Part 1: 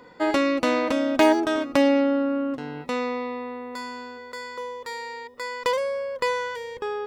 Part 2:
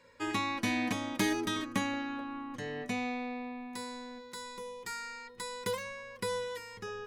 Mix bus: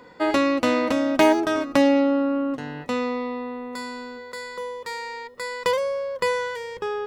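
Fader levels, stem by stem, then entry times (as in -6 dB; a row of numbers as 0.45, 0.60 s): +1.0, -3.5 dB; 0.00, 0.00 s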